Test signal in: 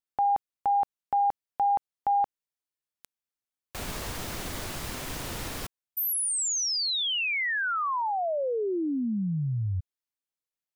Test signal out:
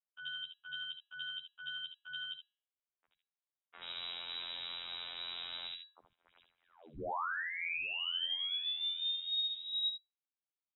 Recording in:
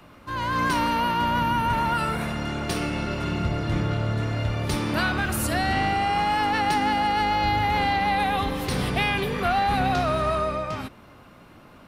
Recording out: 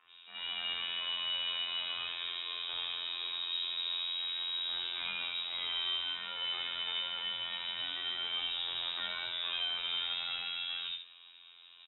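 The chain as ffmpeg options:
-filter_complex "[0:a]volume=27.5dB,asoftclip=hard,volume=-27.5dB,asplit=2[a][b];[b]aecho=0:1:73:0.447[c];[a][c]amix=inputs=2:normalize=0,afftfilt=real='hypot(re,im)*cos(PI*b)':imag='0':win_size=2048:overlap=0.75,bandreject=f=203.6:t=h:w=4,bandreject=f=407.2:t=h:w=4,bandreject=f=610.8:t=h:w=4,bandreject=f=814.4:t=h:w=4,bandreject=f=1.018k:t=h:w=4,bandreject=f=1.2216k:t=h:w=4,bandreject=f=1.4252k:t=h:w=4,bandreject=f=1.6288k:t=h:w=4,bandreject=f=1.8324k:t=h:w=4,bandreject=f=2.036k:t=h:w=4,bandreject=f=2.2396k:t=h:w=4,bandreject=f=2.4432k:t=h:w=4,bandreject=f=2.6468k:t=h:w=4,bandreject=f=2.8504k:t=h:w=4,lowpass=f=3.3k:t=q:w=0.5098,lowpass=f=3.3k:t=q:w=0.6013,lowpass=f=3.3k:t=q:w=0.9,lowpass=f=3.3k:t=q:w=2.563,afreqshift=-3900,acrossover=split=210|2100[d][e][f];[d]adelay=40[g];[f]adelay=80[h];[g][e][h]amix=inputs=3:normalize=0,volume=-3.5dB"

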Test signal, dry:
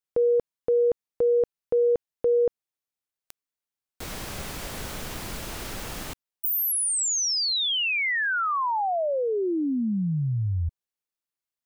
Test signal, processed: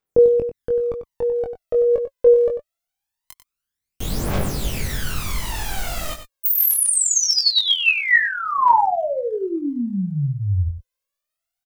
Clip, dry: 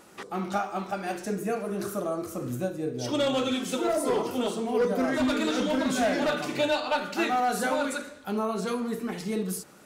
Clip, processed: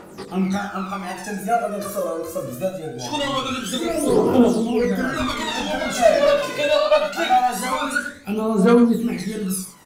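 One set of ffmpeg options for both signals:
-filter_complex "[0:a]highshelf=f=5.4k:g=-11.5,crystalizer=i=1.5:c=0,aphaser=in_gain=1:out_gain=1:delay=2:decay=0.77:speed=0.23:type=triangular,asplit=2[a][b];[b]adelay=21,volume=-4.5dB[c];[a][c]amix=inputs=2:normalize=0,asplit=2[d][e];[e]aecho=0:1:95:0.316[f];[d][f]amix=inputs=2:normalize=0,volume=2dB"

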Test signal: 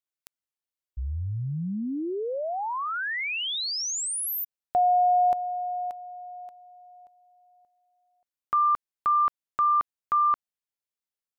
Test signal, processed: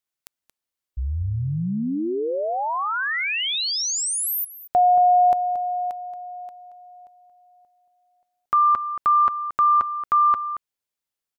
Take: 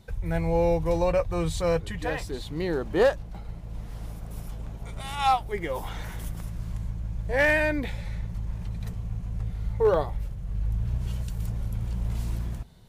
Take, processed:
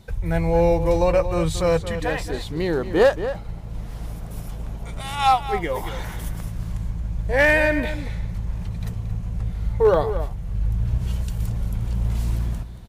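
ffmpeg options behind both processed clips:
-filter_complex "[0:a]asplit=2[a][b];[b]adelay=227.4,volume=-11dB,highshelf=f=4k:g=-5.12[c];[a][c]amix=inputs=2:normalize=0,volume=5dB"

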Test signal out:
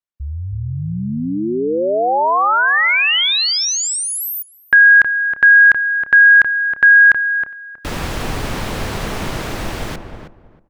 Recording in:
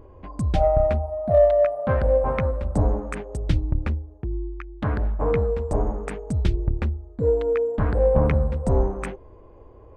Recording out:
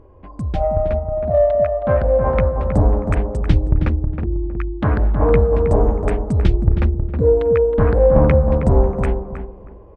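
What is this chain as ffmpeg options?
-filter_complex "[0:a]lowpass=f=3k:p=1,asplit=2[a][b];[b]adelay=318,lowpass=f=1.2k:p=1,volume=-5dB,asplit=2[c][d];[d]adelay=318,lowpass=f=1.2k:p=1,volume=0.29,asplit=2[e][f];[f]adelay=318,lowpass=f=1.2k:p=1,volume=0.29,asplit=2[g][h];[h]adelay=318,lowpass=f=1.2k:p=1,volume=0.29[i];[c][e][g][i]amix=inputs=4:normalize=0[j];[a][j]amix=inputs=2:normalize=0,dynaudnorm=f=200:g=21:m=13.5dB"

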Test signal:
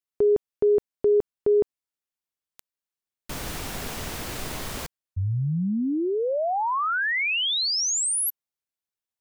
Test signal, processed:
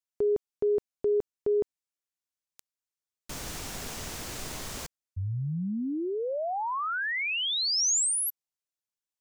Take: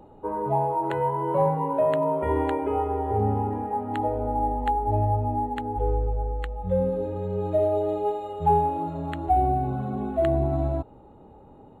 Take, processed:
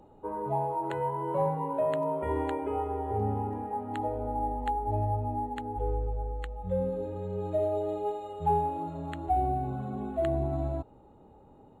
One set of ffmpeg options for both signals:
-af "equalizer=f=6.6k:w=1.1:g=6,volume=-6dB"

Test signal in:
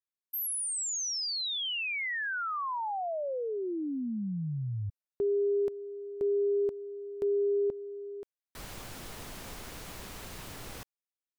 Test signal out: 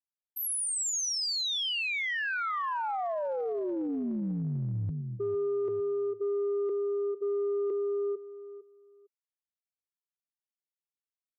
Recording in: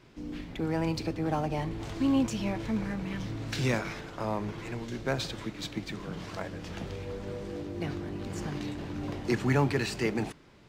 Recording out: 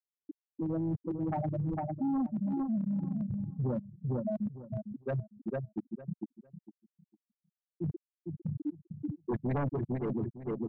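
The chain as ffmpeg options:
-filter_complex "[0:a]afftfilt=real='re*gte(hypot(re,im),0.178)':imag='im*gte(hypot(re,im),0.178)':win_size=1024:overlap=0.75,aeval=exprs='0.158*sin(PI/2*2.24*val(0)/0.158)':c=same,asplit=2[a][b];[b]adelay=454,lowpass=f=2.8k:p=1,volume=-11.5dB,asplit=2[c][d];[d]adelay=454,lowpass=f=2.8k:p=1,volume=0.2,asplit=2[e][f];[f]adelay=454,lowpass=f=2.8k:p=1,volume=0.2[g];[a][c][e][g]amix=inputs=4:normalize=0,areverse,acompressor=threshold=-28dB:ratio=16:attack=0.28:release=128:knee=1:detection=peak,areverse"

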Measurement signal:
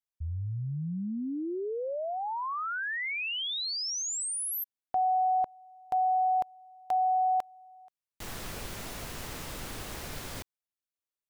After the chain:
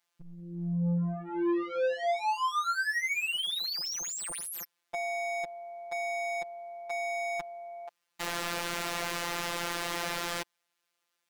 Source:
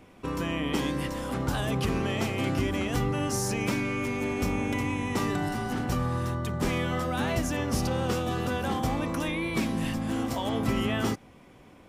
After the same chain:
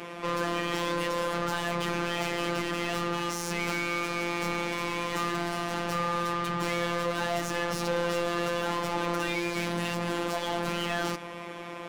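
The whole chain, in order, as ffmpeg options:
-filter_complex "[0:a]asplit=2[a][b];[b]highpass=f=720:p=1,volume=34dB,asoftclip=type=tanh:threshold=-15.5dB[c];[a][c]amix=inputs=2:normalize=0,lowpass=f=2.8k:p=1,volume=-6dB,afftfilt=real='hypot(re,im)*cos(PI*b)':imag='0':win_size=1024:overlap=0.75,volume=-4dB"

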